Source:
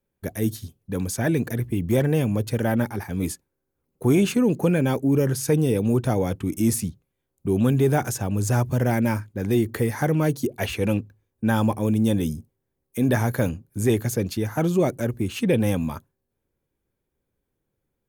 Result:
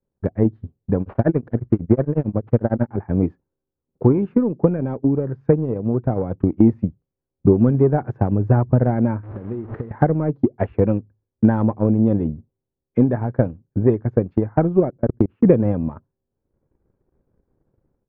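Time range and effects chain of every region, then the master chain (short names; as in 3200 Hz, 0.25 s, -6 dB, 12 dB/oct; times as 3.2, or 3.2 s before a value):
1.01–2.93 careless resampling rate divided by 6×, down none, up hold + beating tremolo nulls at 11 Hz
9.23–9.91 delta modulation 32 kbps, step -27 dBFS + compressor 12:1, threshold -30 dBFS + flutter echo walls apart 9.5 m, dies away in 0.22 s
14.9–15.45 high shelf 3800 Hz -10.5 dB + level quantiser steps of 24 dB
whole clip: Bessel low-pass 970 Hz, order 4; transient shaper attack +11 dB, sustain -7 dB; AGC; gain -1 dB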